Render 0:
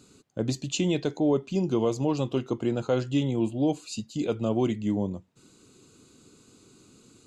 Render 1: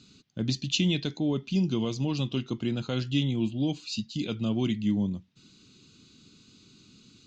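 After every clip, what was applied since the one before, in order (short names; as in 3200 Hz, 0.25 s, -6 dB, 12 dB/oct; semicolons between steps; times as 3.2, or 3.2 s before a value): EQ curve 110 Hz 0 dB, 200 Hz +3 dB, 490 Hz -11 dB, 850 Hz -9 dB, 3500 Hz +7 dB, 5900 Hz +3 dB, 9400 Hz -21 dB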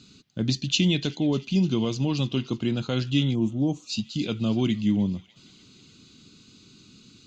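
thin delay 0.3 s, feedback 62%, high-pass 1400 Hz, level -18 dB; spectral gain 3.35–3.89, 1300–5300 Hz -15 dB; gain +3.5 dB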